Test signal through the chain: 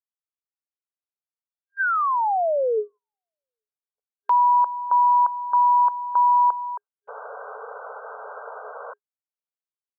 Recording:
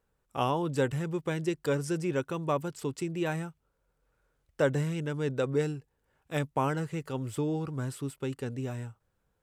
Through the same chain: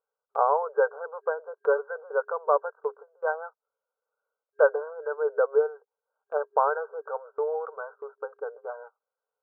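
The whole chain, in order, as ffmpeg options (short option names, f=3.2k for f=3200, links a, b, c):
-af "acontrast=52,afftfilt=real='re*between(b*sr/4096,410,1600)':imag='im*between(b*sr/4096,410,1600)':win_size=4096:overlap=0.75,agate=range=-15dB:threshold=-45dB:ratio=16:detection=peak,volume=1.5dB"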